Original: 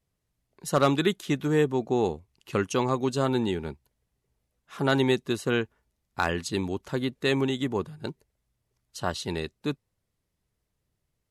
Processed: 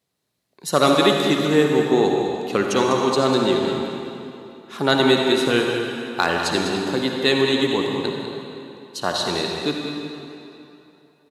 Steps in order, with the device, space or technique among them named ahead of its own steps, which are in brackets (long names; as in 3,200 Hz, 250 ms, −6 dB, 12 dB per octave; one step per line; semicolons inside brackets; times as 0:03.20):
PA in a hall (high-pass filter 190 Hz 12 dB per octave; parametric band 4,000 Hz +7 dB 0.38 octaves; single-tap delay 199 ms −9.5 dB; convolution reverb RT60 3.0 s, pre-delay 51 ms, DRR 1 dB)
level +5.5 dB